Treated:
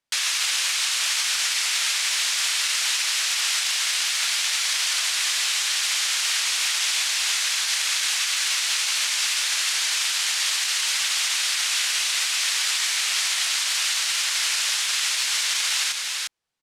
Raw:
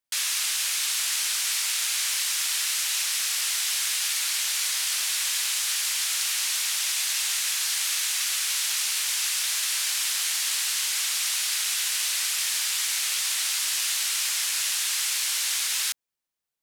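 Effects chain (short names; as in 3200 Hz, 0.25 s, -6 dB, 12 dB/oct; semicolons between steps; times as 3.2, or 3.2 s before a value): echo 0.351 s -5.5 dB; limiter -17.5 dBFS, peak gain reduction 5.5 dB; air absorption 57 m; gain +7.5 dB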